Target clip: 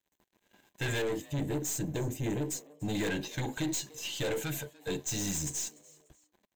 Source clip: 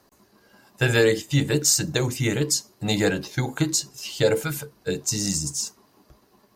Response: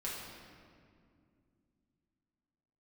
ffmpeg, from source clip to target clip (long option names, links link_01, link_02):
-filter_complex "[0:a]asetnsamples=nb_out_samples=441:pad=0,asendcmd='1.02 equalizer g -9.5;2.95 equalizer g 4.5',equalizer=frequency=3200:width_type=o:width=2.8:gain=3,aeval=exprs='(tanh(22.4*val(0)+0.25)-tanh(0.25))/22.4':channel_layout=same,aeval=exprs='sgn(val(0))*max(abs(val(0))-0.00211,0)':channel_layout=same,superequalizer=6b=1.41:10b=0.447:14b=0.398:16b=0.447,asplit=3[link_01][link_02][link_03];[link_02]adelay=294,afreqshift=150,volume=-23dB[link_04];[link_03]adelay=588,afreqshift=300,volume=-31.9dB[link_05];[link_01][link_04][link_05]amix=inputs=3:normalize=0,volume=-2.5dB"